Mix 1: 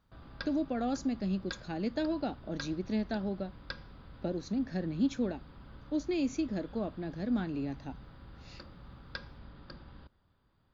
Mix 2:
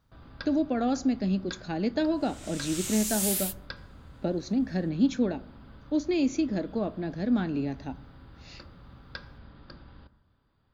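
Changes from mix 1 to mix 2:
speech +5.0 dB
second sound: unmuted
reverb: on, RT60 1.0 s

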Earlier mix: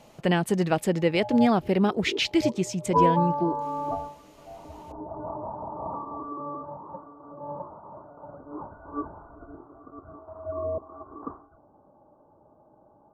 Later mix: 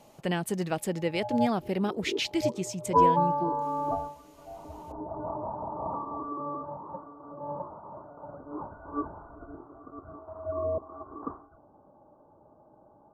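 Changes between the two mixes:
speech −6.5 dB
master: add high-shelf EQ 6,700 Hz +9.5 dB

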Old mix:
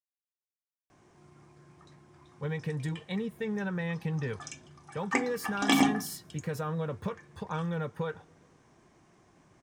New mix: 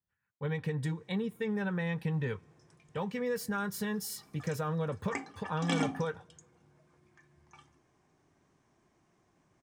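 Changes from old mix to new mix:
speech: entry −2.00 s
background −8.5 dB

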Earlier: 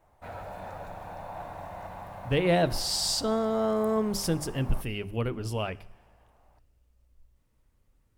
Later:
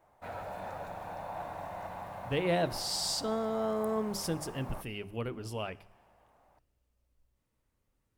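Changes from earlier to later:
speech −5.0 dB
master: add low-shelf EQ 84 Hz −10 dB

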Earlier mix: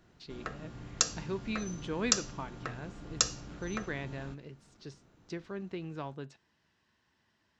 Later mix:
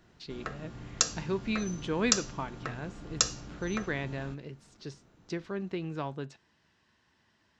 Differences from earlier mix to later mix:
speech +4.5 dB
background: send +6.5 dB

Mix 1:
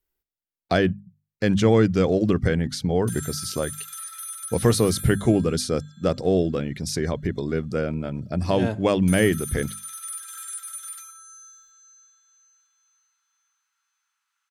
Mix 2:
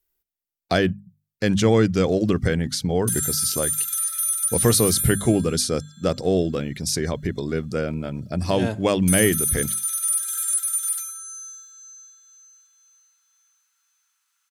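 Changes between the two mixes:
background: add high-shelf EQ 6,000 Hz +7 dB
master: add high-shelf EQ 4,000 Hz +8 dB

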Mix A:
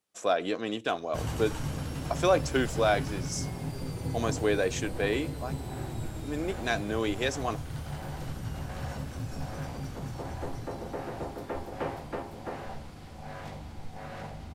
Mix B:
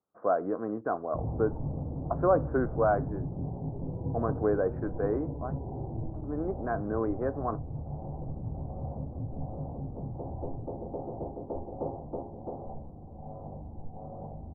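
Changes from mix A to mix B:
first sound: add Butterworth low-pass 820 Hz 36 dB per octave
master: add Butterworth low-pass 1,400 Hz 48 dB per octave

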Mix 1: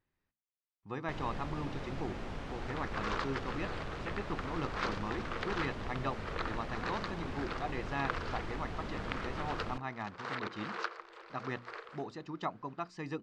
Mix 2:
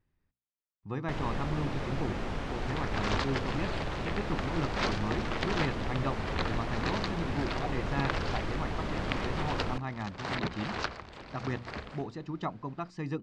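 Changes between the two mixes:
speech: add low-shelf EQ 240 Hz +11.5 dB
first sound +6.5 dB
second sound: remove Chebyshev high-pass with heavy ripple 330 Hz, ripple 9 dB

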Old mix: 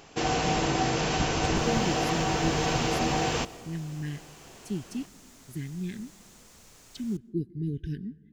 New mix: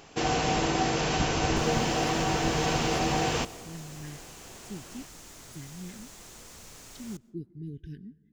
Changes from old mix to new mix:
speech −8.0 dB
second sound +6.0 dB

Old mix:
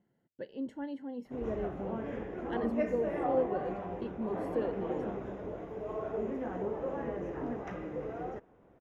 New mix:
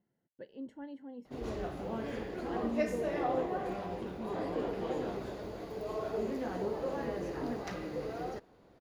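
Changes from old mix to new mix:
speech −6.0 dB
background: remove moving average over 10 samples

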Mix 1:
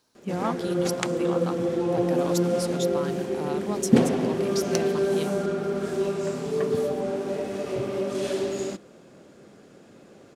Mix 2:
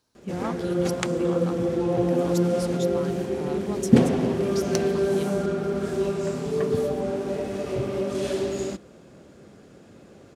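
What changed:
speech −4.5 dB
master: add parametric band 62 Hz +11.5 dB 1.8 octaves

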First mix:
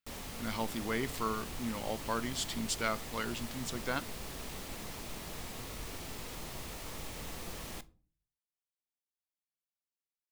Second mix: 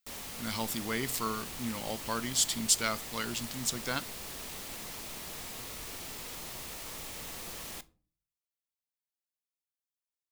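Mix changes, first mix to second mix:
speech: add bass and treble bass +7 dB, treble +8 dB
master: add spectral tilt +1.5 dB per octave

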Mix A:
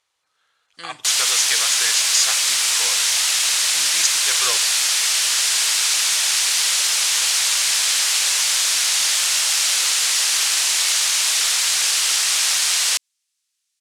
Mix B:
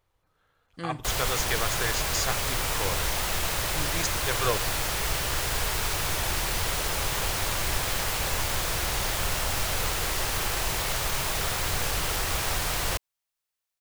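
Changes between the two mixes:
background: add tilt shelving filter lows +4.5 dB, about 1,300 Hz
master: remove meter weighting curve ITU-R 468

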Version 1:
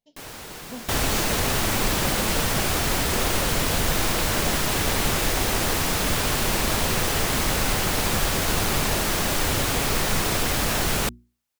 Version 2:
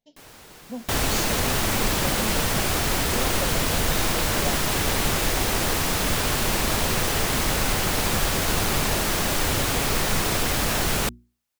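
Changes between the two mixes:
speech +3.5 dB
first sound −8.0 dB

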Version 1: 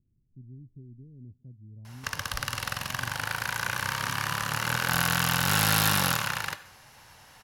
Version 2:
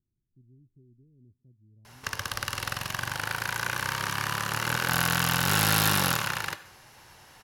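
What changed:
speech −11.5 dB
master: add parametric band 360 Hz +7 dB 0.46 octaves

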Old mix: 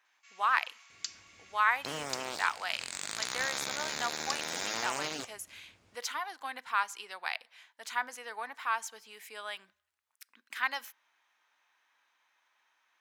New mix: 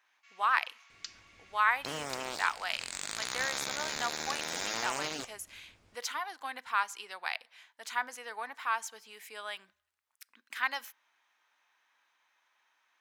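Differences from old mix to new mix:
first sound: add high-frequency loss of the air 110 metres
master: remove high-pass filter 71 Hz

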